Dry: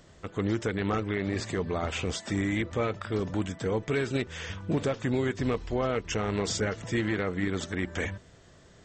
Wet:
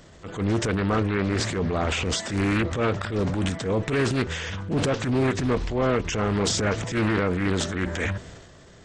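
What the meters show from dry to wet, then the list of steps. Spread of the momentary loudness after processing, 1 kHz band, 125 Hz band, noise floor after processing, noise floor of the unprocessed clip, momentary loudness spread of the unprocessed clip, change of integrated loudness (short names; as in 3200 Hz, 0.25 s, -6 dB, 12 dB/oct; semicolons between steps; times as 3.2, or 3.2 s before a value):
4 LU, +6.0 dB, +6.5 dB, -49 dBFS, -55 dBFS, 4 LU, +5.5 dB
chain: transient shaper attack -9 dB, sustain +7 dB; Doppler distortion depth 0.43 ms; gain +6 dB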